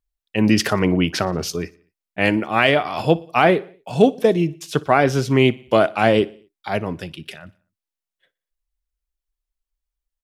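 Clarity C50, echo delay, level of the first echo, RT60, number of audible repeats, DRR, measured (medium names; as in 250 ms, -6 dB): no reverb, 60 ms, -23.0 dB, no reverb, 3, no reverb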